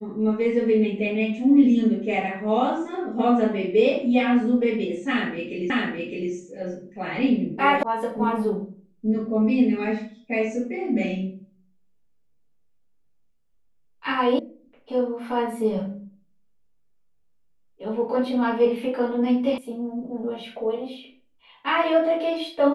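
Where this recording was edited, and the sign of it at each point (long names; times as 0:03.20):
0:05.70: the same again, the last 0.61 s
0:07.83: cut off before it has died away
0:14.39: cut off before it has died away
0:19.58: cut off before it has died away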